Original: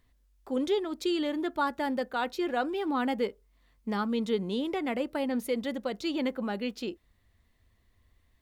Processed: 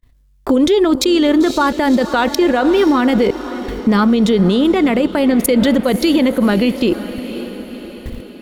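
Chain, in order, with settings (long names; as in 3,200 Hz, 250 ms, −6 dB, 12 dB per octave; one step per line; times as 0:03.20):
notch filter 800 Hz, Q 12
noise gate with hold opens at −55 dBFS
low-shelf EQ 210 Hz +6.5 dB
output level in coarse steps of 21 dB
transient designer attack +9 dB, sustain −11 dB
feedback delay with all-pass diffusion 528 ms, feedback 55%, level −15.5 dB
boost into a limiter +35 dB
level −4 dB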